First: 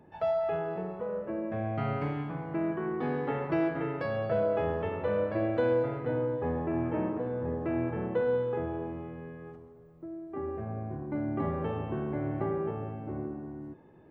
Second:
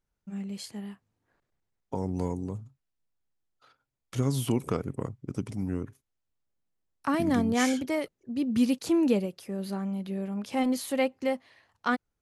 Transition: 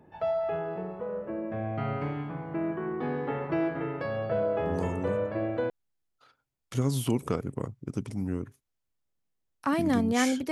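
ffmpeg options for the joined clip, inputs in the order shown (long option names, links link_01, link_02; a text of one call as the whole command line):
ffmpeg -i cue0.wav -i cue1.wav -filter_complex "[0:a]apad=whole_dur=10.51,atrim=end=10.51,atrim=end=5.7,asetpts=PTS-STARTPTS[link_01];[1:a]atrim=start=2.07:end=7.92,asetpts=PTS-STARTPTS[link_02];[link_01][link_02]acrossfade=duration=1.04:curve1=log:curve2=log" out.wav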